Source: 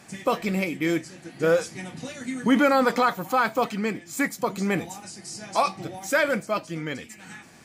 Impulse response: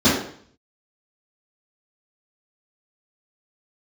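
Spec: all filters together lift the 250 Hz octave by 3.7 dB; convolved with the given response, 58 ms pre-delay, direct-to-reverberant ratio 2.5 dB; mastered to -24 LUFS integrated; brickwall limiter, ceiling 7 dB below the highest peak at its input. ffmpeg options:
-filter_complex "[0:a]equalizer=f=250:t=o:g=4.5,alimiter=limit=0.211:level=0:latency=1,asplit=2[s0][s1];[1:a]atrim=start_sample=2205,adelay=58[s2];[s1][s2]afir=irnorm=-1:irlink=0,volume=0.0631[s3];[s0][s3]amix=inputs=2:normalize=0,volume=0.531"

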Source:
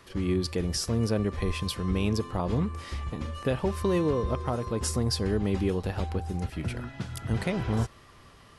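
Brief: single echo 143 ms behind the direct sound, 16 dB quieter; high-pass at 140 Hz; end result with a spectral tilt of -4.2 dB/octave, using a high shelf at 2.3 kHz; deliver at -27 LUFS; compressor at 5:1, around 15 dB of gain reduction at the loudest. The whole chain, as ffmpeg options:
-af "highpass=140,highshelf=f=2300:g=7,acompressor=threshold=0.0112:ratio=5,aecho=1:1:143:0.158,volume=5.62"

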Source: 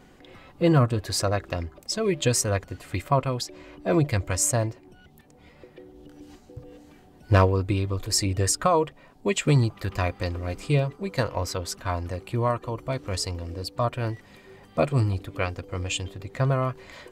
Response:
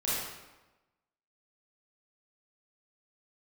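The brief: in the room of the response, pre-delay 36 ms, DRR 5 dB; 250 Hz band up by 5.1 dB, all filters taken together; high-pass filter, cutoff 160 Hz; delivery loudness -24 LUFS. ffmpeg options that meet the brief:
-filter_complex "[0:a]highpass=160,equalizer=f=250:t=o:g=8.5,asplit=2[s0][s1];[1:a]atrim=start_sample=2205,adelay=36[s2];[s1][s2]afir=irnorm=-1:irlink=0,volume=0.237[s3];[s0][s3]amix=inputs=2:normalize=0"

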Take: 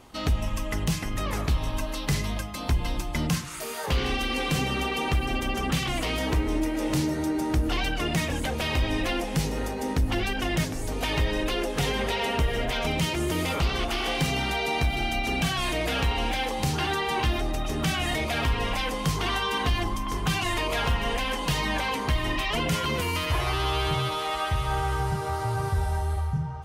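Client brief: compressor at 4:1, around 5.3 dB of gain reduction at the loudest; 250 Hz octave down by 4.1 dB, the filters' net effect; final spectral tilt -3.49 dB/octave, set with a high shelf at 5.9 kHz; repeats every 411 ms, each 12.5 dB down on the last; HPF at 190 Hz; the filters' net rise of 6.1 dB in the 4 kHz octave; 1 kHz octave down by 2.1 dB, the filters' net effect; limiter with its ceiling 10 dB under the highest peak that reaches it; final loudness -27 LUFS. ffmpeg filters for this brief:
-af "highpass=190,equalizer=f=250:t=o:g=-3.5,equalizer=f=1000:t=o:g=-3,equalizer=f=4000:t=o:g=7,highshelf=f=5900:g=4.5,acompressor=threshold=0.0355:ratio=4,alimiter=limit=0.0708:level=0:latency=1,aecho=1:1:411|822|1233:0.237|0.0569|0.0137,volume=1.68"

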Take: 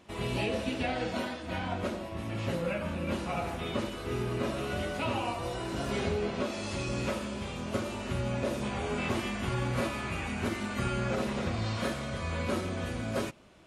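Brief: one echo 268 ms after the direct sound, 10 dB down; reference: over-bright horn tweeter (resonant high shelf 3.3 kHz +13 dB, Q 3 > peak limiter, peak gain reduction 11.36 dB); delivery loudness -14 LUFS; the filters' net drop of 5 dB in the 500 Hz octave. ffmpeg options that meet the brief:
-af "equalizer=f=500:t=o:g=-6,highshelf=f=3300:t=q:w=3:g=13,aecho=1:1:268:0.316,volume=9.44,alimiter=limit=0.473:level=0:latency=1"

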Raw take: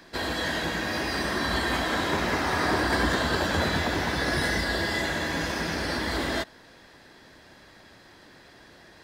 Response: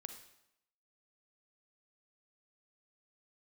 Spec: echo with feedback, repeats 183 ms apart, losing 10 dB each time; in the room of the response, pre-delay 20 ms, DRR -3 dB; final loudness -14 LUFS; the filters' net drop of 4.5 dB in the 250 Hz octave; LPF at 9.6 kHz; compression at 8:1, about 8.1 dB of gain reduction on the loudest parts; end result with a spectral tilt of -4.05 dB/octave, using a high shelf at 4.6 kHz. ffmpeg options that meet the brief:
-filter_complex "[0:a]lowpass=9600,equalizer=f=250:t=o:g=-6,highshelf=f=4600:g=-5,acompressor=threshold=0.0282:ratio=8,aecho=1:1:183|366|549|732:0.316|0.101|0.0324|0.0104,asplit=2[s0][s1];[1:a]atrim=start_sample=2205,adelay=20[s2];[s1][s2]afir=irnorm=-1:irlink=0,volume=2.37[s3];[s0][s3]amix=inputs=2:normalize=0,volume=5.62"

